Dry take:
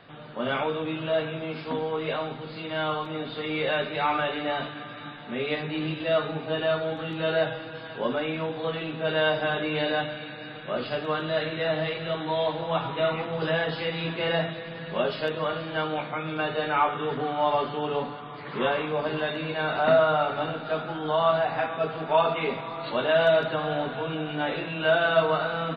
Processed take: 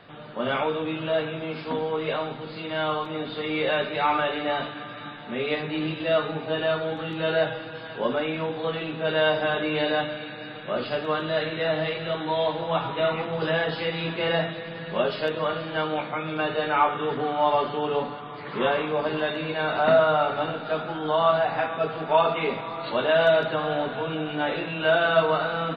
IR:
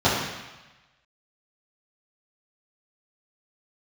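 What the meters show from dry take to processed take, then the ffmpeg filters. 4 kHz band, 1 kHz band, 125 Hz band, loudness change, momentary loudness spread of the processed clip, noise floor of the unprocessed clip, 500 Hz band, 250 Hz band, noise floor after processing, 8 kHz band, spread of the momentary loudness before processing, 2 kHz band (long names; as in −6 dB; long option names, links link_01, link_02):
+1.5 dB, +2.0 dB, 0.0 dB, +1.5 dB, 10 LU, −40 dBFS, +1.5 dB, +1.5 dB, −38 dBFS, can't be measured, 10 LU, +1.5 dB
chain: -filter_complex "[0:a]asplit=2[link_01][link_02];[1:a]atrim=start_sample=2205,asetrate=70560,aresample=44100[link_03];[link_02][link_03]afir=irnorm=-1:irlink=0,volume=-34dB[link_04];[link_01][link_04]amix=inputs=2:normalize=0,volume=1.5dB"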